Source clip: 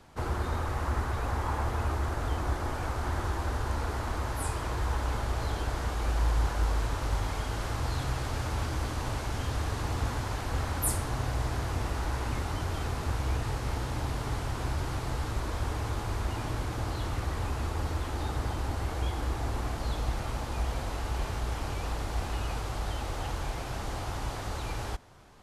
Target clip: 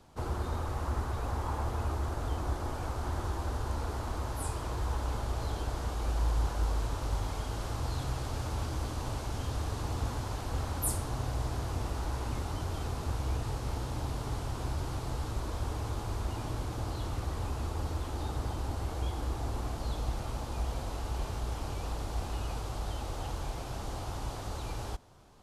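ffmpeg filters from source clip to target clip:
-af "equalizer=f=1.9k:w=1.4:g=-6.5,volume=-2.5dB"

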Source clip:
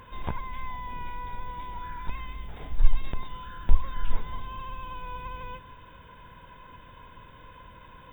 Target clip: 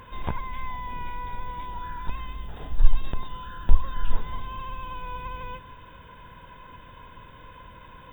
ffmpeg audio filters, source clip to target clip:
-filter_complex "[0:a]asettb=1/sr,asplit=3[a][b][c];[a]atrim=end=1.654[d];[b]atrim=start=1.65:end=4.22,asetpts=PTS-STARTPTS,afade=t=in:d=0.004:c=qsin,afade=t=out:st=2.566:d=0.004:c=qsin,bandreject=f=2.2k:w=5.5[e];[c]atrim=start=4.216[f];[d][e]acrossfade=d=0.004:c1=hsin:c2=qsin[g];[g][f]acrossfade=d=0.004:c1=qsin:c2=hsin,volume=2.5dB"

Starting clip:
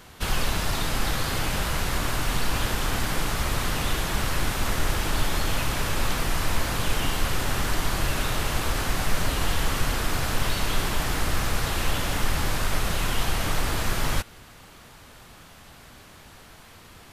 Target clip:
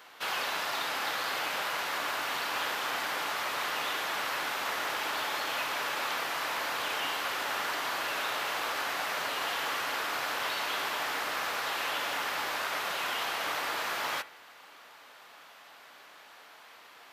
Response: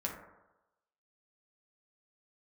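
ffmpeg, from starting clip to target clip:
-filter_complex "[0:a]highpass=650,equalizer=f=9.3k:t=o:w=1.4:g=-11,asplit=2[a][b];[1:a]atrim=start_sample=2205,asetrate=66150,aresample=44100[c];[b][c]afir=irnorm=-1:irlink=0,volume=-9dB[d];[a][d]amix=inputs=2:normalize=0,volume=-2dB"

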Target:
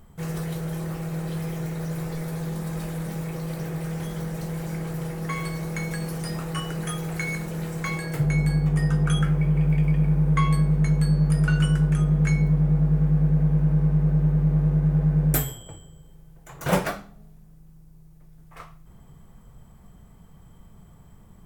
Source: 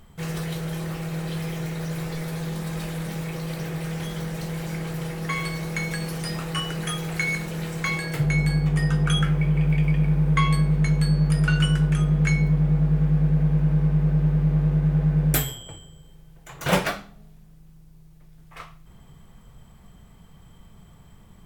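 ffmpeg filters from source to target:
-af "equalizer=f=3.2k:t=o:w=1.8:g=-7.5"

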